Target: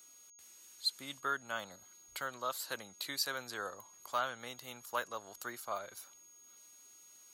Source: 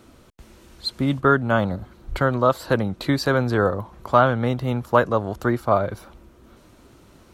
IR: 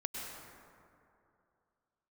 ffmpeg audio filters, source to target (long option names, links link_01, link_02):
-af "aderivative,aeval=exprs='val(0)+0.00158*sin(2*PI*6600*n/s)':channel_layout=same,volume=-1.5dB"